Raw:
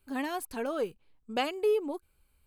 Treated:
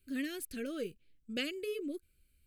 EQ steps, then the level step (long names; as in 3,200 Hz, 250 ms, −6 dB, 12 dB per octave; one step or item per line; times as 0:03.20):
Butterworth band-reject 890 Hz, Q 0.67
notch filter 430 Hz, Q 12
−1.5 dB